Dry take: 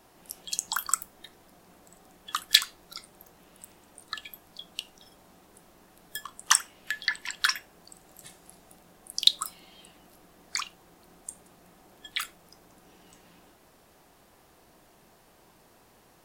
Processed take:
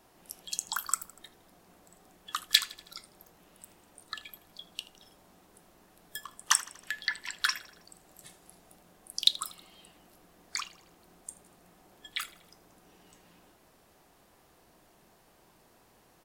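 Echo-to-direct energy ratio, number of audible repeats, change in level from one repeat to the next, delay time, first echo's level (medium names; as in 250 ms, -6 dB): -18.5 dB, 3, -5.0 dB, 80 ms, -20.0 dB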